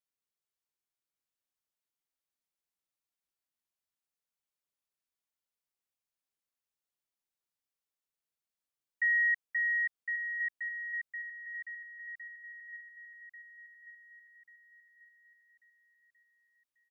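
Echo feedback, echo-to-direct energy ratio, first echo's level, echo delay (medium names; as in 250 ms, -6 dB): 41%, -4.0 dB, -5.0 dB, 1140 ms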